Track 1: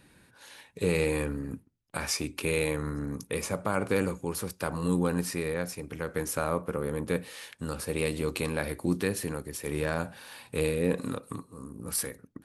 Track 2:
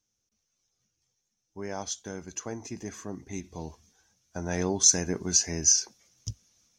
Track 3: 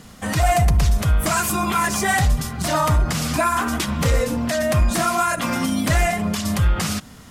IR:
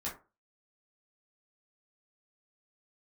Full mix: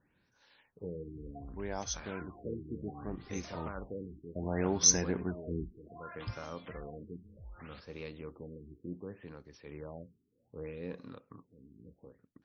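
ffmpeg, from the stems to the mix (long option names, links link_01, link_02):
-filter_complex "[0:a]volume=-14.5dB[link_01];[1:a]volume=-3dB[link_02];[2:a]acompressor=threshold=-22dB:ratio=10,equalizer=frequency=190:width=0.69:gain=-14,adelay=800,volume=-20dB[link_03];[link_01][link_02][link_03]amix=inputs=3:normalize=0,afftfilt=real='re*lt(b*sr/1024,420*pow(6600/420,0.5+0.5*sin(2*PI*0.66*pts/sr)))':imag='im*lt(b*sr/1024,420*pow(6600/420,0.5+0.5*sin(2*PI*0.66*pts/sr)))':win_size=1024:overlap=0.75"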